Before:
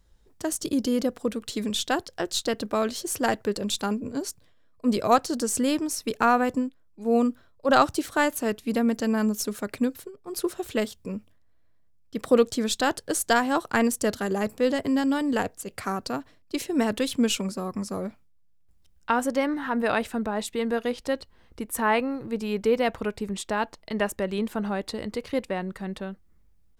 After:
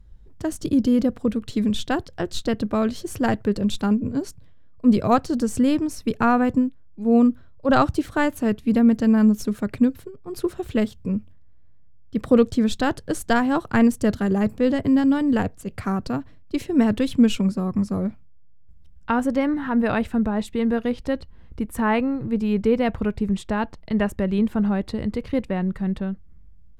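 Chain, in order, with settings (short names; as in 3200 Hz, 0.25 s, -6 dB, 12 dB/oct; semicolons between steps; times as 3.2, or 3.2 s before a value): tone controls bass +14 dB, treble -8 dB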